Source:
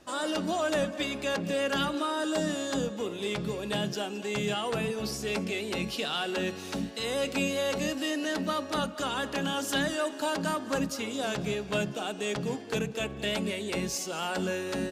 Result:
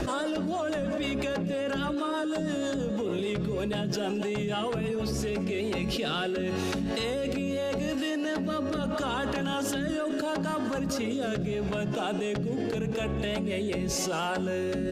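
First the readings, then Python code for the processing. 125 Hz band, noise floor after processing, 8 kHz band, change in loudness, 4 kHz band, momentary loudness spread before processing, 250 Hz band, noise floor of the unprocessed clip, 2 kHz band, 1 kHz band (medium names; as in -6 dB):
+4.0 dB, -31 dBFS, -2.0 dB, +1.0 dB, -2.5 dB, 4 LU, +3.0 dB, -40 dBFS, -2.0 dB, -0.5 dB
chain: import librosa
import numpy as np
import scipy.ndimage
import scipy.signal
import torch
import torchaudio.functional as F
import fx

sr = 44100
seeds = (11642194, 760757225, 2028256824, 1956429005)

y = fx.low_shelf(x, sr, hz=95.0, db=6.5)
y = fx.rotary_switch(y, sr, hz=6.3, then_hz=0.8, switch_at_s=5.01)
y = fx.high_shelf(y, sr, hz=2600.0, db=-8.0)
y = fx.env_flatten(y, sr, amount_pct=100)
y = F.gain(torch.from_numpy(y), -3.0).numpy()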